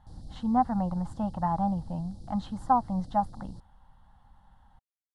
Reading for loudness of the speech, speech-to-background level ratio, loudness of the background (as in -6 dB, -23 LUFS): -29.5 LUFS, 18.5 dB, -48.0 LUFS